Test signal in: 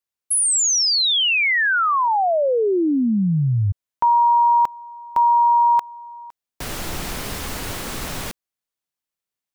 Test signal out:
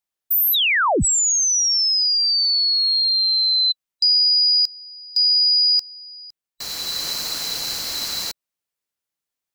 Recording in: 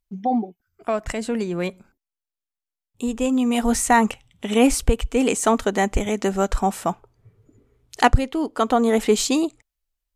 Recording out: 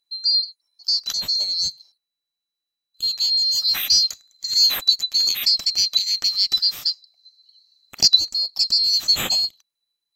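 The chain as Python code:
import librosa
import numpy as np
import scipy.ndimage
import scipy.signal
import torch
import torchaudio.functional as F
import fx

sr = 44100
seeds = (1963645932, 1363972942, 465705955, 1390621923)

p1 = fx.band_swap(x, sr, width_hz=4000)
p2 = fx.rider(p1, sr, range_db=3, speed_s=0.5)
p3 = p1 + (p2 * 10.0 ** (2.0 / 20.0))
y = p3 * 10.0 ** (-7.0 / 20.0)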